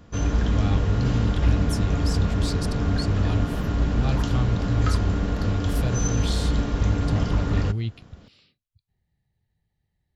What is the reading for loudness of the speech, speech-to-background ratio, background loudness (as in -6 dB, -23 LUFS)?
-28.5 LUFS, -3.0 dB, -25.5 LUFS